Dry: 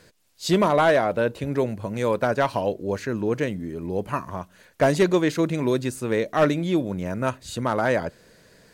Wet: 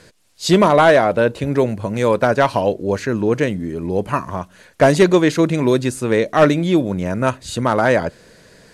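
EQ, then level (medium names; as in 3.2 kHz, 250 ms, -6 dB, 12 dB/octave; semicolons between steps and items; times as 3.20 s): low-pass 12 kHz 24 dB/octave; +7.0 dB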